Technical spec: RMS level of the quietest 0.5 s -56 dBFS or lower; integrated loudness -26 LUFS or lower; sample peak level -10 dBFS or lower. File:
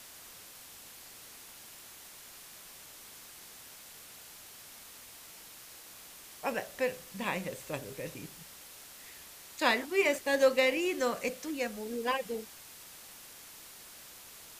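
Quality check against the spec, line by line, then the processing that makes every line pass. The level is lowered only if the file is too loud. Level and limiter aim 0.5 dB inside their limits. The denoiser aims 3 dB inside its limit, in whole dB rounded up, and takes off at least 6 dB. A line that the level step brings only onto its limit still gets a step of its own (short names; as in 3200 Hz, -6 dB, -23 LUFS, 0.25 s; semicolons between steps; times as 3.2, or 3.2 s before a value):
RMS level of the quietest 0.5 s -51 dBFS: fail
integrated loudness -32.0 LUFS: OK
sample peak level -11.0 dBFS: OK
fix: denoiser 8 dB, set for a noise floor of -51 dBFS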